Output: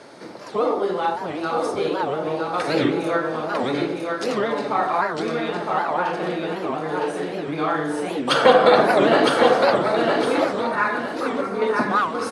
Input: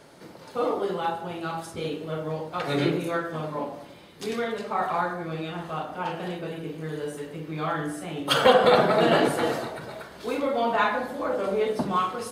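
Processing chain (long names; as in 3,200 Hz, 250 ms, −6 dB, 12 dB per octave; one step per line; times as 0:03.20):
in parallel at −1.5 dB: downward compressor, threshold −33 dBFS, peak gain reduction 19 dB
on the sum: loudspeaker in its box 140–9,000 Hz, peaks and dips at 160 Hz −8 dB, 3,000 Hz −5 dB, 7,400 Hz −7 dB
0:10.45–0:11.62: phaser with its sweep stopped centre 1,500 Hz, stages 4
on a send: repeating echo 960 ms, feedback 29%, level −3.5 dB
on the sum: wow of a warped record 78 rpm, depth 250 cents
level +3 dB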